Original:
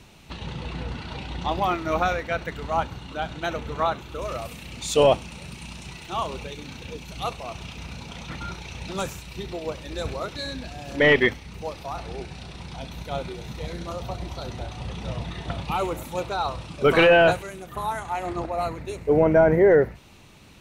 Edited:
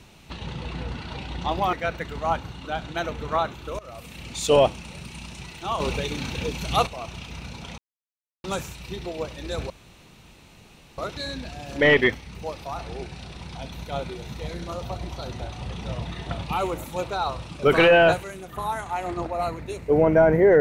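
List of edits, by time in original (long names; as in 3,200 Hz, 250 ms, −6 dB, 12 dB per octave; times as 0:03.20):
0:01.73–0:02.20: remove
0:04.26–0:04.67: fade in, from −19 dB
0:06.27–0:07.34: clip gain +8 dB
0:08.25–0:08.91: silence
0:10.17: splice in room tone 1.28 s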